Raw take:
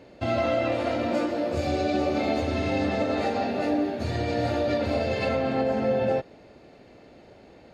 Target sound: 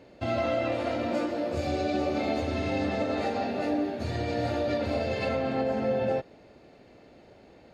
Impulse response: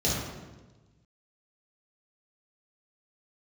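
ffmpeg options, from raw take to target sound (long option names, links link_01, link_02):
-af "volume=-3dB"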